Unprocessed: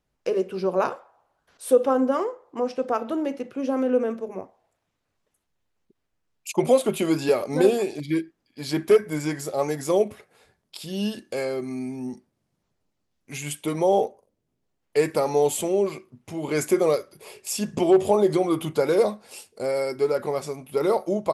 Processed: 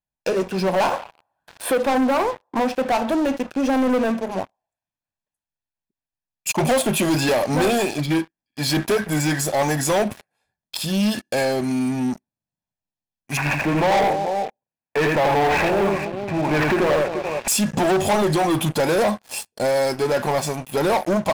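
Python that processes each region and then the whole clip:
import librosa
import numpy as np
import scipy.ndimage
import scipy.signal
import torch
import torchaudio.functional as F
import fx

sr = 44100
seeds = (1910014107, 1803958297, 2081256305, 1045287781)

y = fx.chain(x, sr, fx.highpass(hz=61.0, slope=12),
    fx.peak_eq(hz=6100.0, db=-8.5, octaves=1.0),
    fx.band_squash(depth_pct=40), at=(0.93, 2.92))
y = fx.chain(y, sr, fx.highpass(hz=91.0, slope=12),
    fx.echo_multitap(ms=(85, 261, 435), db=(-3.5, -16.0, -14.0)),
    fx.resample_bad(factor=8, down='none', up='filtered'), at=(13.37, 17.48))
y = fx.low_shelf(y, sr, hz=140.0, db=-4.5)
y = y + 0.59 * np.pad(y, (int(1.2 * sr / 1000.0), 0))[:len(y)]
y = fx.leveller(y, sr, passes=5)
y = y * librosa.db_to_amplitude(-7.0)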